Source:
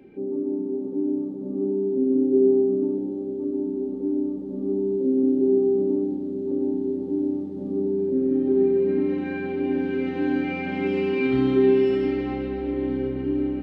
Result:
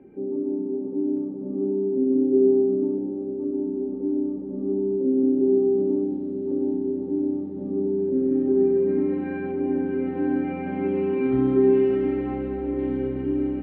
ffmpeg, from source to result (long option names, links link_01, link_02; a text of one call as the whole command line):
ffmpeg -i in.wav -af "asetnsamples=nb_out_samples=441:pad=0,asendcmd='1.17 lowpass f 1900;5.38 lowpass f 2900;6.77 lowpass f 2200;8.46 lowpass f 1700;9.51 lowpass f 1300;11.73 lowpass f 1700;12.79 lowpass f 2500',lowpass=1400" out.wav